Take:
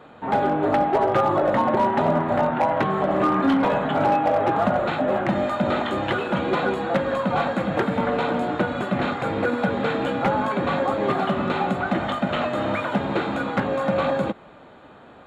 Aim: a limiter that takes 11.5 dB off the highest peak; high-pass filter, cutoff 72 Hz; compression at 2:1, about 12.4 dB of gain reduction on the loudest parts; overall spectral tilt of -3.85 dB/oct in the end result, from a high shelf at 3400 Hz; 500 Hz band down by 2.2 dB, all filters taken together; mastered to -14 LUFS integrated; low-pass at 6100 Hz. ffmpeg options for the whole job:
-af "highpass=72,lowpass=6.1k,equalizer=f=500:t=o:g=-3,highshelf=f=3.4k:g=9,acompressor=threshold=-41dB:ratio=2,volume=26dB,alimiter=limit=-6dB:level=0:latency=1"

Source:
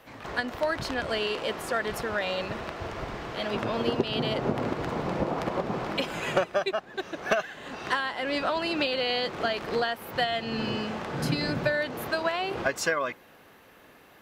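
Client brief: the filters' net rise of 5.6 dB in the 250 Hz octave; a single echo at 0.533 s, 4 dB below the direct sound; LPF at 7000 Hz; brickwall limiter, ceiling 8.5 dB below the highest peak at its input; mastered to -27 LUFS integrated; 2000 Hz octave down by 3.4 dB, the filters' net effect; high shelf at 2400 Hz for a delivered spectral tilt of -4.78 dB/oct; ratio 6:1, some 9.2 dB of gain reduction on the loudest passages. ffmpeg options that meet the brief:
-af "lowpass=7k,equalizer=f=250:t=o:g=7,equalizer=f=2k:t=o:g=-7.5,highshelf=f=2.4k:g=6,acompressor=threshold=-27dB:ratio=6,alimiter=limit=-23dB:level=0:latency=1,aecho=1:1:533:0.631,volume=5dB"

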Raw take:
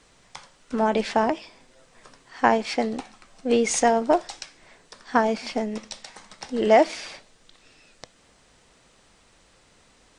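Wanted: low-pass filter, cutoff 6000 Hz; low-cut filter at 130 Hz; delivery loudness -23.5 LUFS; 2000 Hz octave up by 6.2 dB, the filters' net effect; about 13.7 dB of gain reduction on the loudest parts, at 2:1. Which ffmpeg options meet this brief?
-af "highpass=130,lowpass=6k,equalizer=f=2k:t=o:g=7.5,acompressor=threshold=-36dB:ratio=2,volume=11dB"

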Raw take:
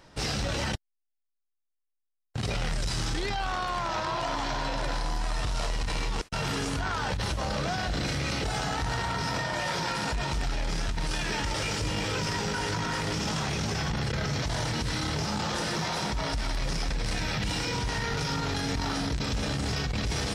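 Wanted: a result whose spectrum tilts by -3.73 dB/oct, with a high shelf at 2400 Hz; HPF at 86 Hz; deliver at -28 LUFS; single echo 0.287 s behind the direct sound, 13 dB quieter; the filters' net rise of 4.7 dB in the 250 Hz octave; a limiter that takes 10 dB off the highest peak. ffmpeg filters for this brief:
-af "highpass=86,equalizer=f=250:t=o:g=6.5,highshelf=f=2.4k:g=4,alimiter=level_in=1dB:limit=-24dB:level=0:latency=1,volume=-1dB,aecho=1:1:287:0.224,volume=5dB"

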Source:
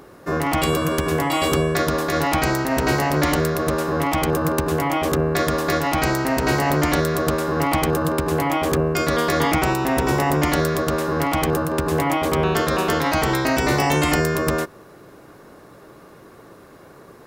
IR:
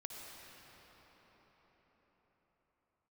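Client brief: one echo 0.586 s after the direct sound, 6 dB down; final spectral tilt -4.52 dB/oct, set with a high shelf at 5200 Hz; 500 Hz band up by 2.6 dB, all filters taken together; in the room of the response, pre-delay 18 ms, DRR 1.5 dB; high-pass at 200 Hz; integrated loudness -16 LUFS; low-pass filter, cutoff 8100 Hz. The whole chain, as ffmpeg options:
-filter_complex "[0:a]highpass=200,lowpass=8.1k,equalizer=f=500:t=o:g=3.5,highshelf=f=5.2k:g=4,aecho=1:1:586:0.501,asplit=2[a][b];[1:a]atrim=start_sample=2205,adelay=18[c];[b][c]afir=irnorm=-1:irlink=0,volume=0.5dB[d];[a][d]amix=inputs=2:normalize=0,volume=0.5dB"

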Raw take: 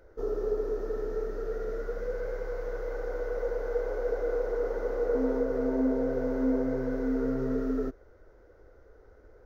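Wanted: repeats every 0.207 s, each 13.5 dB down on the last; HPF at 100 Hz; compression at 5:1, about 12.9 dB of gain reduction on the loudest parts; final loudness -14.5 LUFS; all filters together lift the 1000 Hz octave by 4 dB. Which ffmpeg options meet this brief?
-af "highpass=100,equalizer=f=1k:t=o:g=5.5,acompressor=threshold=-38dB:ratio=5,aecho=1:1:207|414:0.211|0.0444,volume=26dB"

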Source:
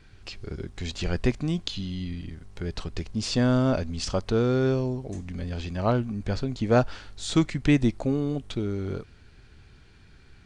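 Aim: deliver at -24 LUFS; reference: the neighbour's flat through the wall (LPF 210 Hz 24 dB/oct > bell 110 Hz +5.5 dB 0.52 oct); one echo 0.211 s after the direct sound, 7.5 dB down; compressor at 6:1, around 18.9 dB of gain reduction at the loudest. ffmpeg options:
-af "acompressor=threshold=-37dB:ratio=6,lowpass=f=210:w=0.5412,lowpass=f=210:w=1.3066,equalizer=f=110:t=o:w=0.52:g=5.5,aecho=1:1:211:0.422,volume=18dB"

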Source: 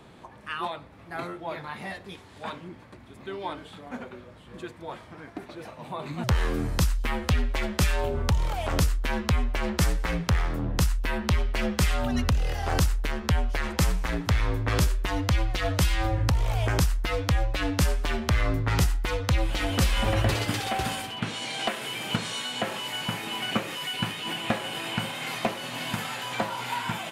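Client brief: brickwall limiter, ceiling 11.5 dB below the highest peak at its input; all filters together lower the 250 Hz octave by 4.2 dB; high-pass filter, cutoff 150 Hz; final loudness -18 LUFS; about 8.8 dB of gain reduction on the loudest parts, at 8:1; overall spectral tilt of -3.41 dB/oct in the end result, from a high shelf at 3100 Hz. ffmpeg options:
-af "highpass=150,equalizer=f=250:t=o:g=-4.5,highshelf=f=3.1k:g=8,acompressor=threshold=-32dB:ratio=8,volume=18.5dB,alimiter=limit=-5.5dB:level=0:latency=1"

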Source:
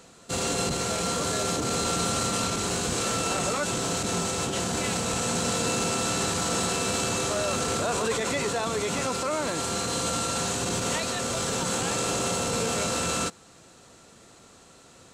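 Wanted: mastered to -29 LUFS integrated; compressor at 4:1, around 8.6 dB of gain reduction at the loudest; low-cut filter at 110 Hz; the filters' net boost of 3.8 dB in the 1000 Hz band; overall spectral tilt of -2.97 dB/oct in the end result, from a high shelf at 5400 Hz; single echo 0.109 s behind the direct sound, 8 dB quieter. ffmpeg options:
-af "highpass=110,equalizer=f=1k:t=o:g=5.5,highshelf=f=5.4k:g=-4,acompressor=threshold=-33dB:ratio=4,aecho=1:1:109:0.398,volume=4.5dB"

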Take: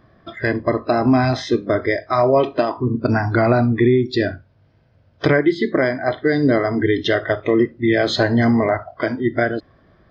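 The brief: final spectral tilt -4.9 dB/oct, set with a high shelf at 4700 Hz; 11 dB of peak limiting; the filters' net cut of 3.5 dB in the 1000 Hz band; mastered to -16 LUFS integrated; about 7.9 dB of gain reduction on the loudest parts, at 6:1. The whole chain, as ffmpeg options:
-af "equalizer=f=1k:t=o:g=-6,highshelf=f=4.7k:g=9,acompressor=threshold=-20dB:ratio=6,volume=12dB,alimiter=limit=-6.5dB:level=0:latency=1"

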